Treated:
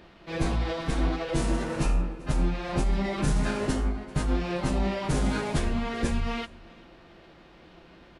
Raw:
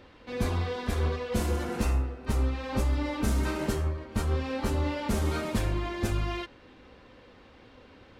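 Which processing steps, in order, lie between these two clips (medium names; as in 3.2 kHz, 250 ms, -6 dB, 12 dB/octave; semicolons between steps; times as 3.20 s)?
formant-preserving pitch shift -7 st; on a send: delay 390 ms -23.5 dB; on the sum: trim +2.5 dB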